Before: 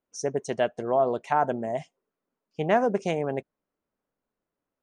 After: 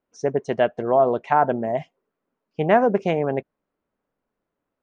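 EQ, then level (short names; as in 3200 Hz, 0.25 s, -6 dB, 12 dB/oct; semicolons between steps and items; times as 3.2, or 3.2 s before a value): LPF 2900 Hz 12 dB/oct; +5.5 dB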